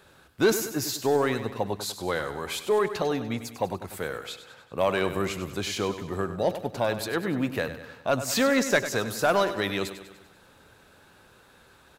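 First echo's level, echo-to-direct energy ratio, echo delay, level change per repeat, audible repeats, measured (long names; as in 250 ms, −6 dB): −11.5 dB, −10.0 dB, 98 ms, −5.5 dB, 5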